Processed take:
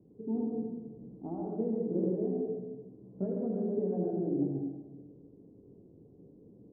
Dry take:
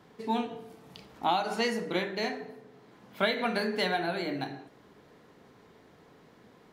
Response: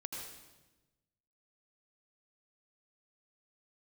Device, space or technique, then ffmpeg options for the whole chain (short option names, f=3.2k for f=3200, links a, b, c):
next room: -filter_complex "[0:a]lowpass=f=420:w=0.5412,lowpass=f=420:w=1.3066[a];[1:a]atrim=start_sample=2205[b];[a][b]afir=irnorm=-1:irlink=0,asettb=1/sr,asplit=3[c][d][e];[c]atrim=end=2.004[f];[d]atrim=start=2:end=3.29,asetpts=PTS-STARTPTS,afade=t=in:d=0.004:c=qsin,afade=t=out:st=1.286:d=0.004:c=qsin,asplit=2[g][h];[h]adelay=16,volume=-5dB[i];[g][i]amix=inputs=2:normalize=0,atrim=end_sample=56889[j];[e]atrim=start=3.286[k];[f][j]acrossfade=d=0.004:c1=hsin:c2=qsin[l];[l][k]acrossfade=d=0.004:c1=qsin:c2=hsin,volume=4dB"